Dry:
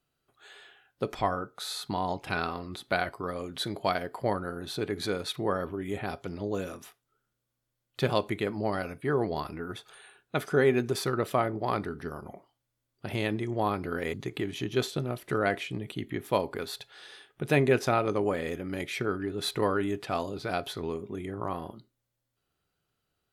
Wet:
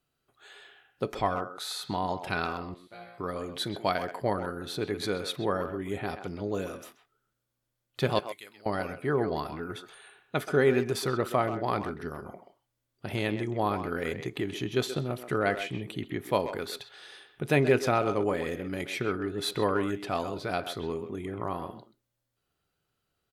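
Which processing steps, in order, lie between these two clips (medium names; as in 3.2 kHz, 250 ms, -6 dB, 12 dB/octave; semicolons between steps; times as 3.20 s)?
2.74–3.18 s: chord resonator A#2 fifth, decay 0.76 s; 8.19–8.66 s: pre-emphasis filter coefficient 0.97; speakerphone echo 130 ms, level -9 dB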